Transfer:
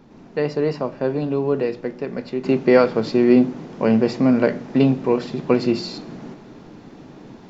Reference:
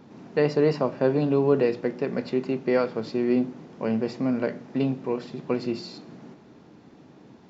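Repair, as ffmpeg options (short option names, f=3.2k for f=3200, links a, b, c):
-af "agate=range=-21dB:threshold=-34dB,asetnsamples=n=441:p=0,asendcmd='2.44 volume volume -9dB',volume=0dB"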